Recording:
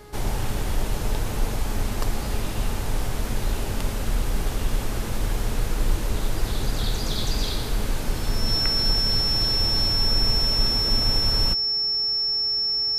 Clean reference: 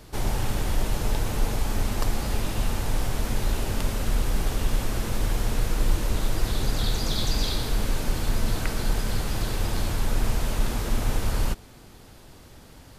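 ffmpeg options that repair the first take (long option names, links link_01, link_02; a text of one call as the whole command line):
ffmpeg -i in.wav -af "bandreject=frequency=416.9:width_type=h:width=4,bandreject=frequency=833.8:width_type=h:width=4,bandreject=frequency=1250.7:width_type=h:width=4,bandreject=frequency=1667.6:width_type=h:width=4,bandreject=frequency=2084.5:width_type=h:width=4,bandreject=frequency=5400:width=30" out.wav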